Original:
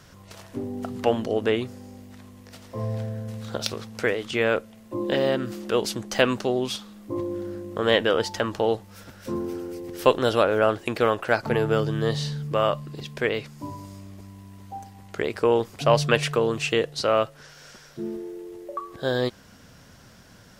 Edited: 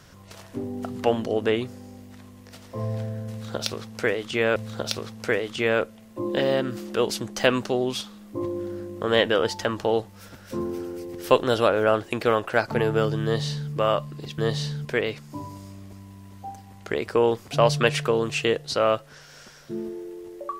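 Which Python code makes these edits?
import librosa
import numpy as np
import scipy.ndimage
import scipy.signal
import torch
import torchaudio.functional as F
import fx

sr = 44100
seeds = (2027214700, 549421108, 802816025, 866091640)

y = fx.edit(x, sr, fx.repeat(start_s=3.31, length_s=1.25, count=2),
    fx.duplicate(start_s=11.99, length_s=0.47, to_s=13.13), tone=tone)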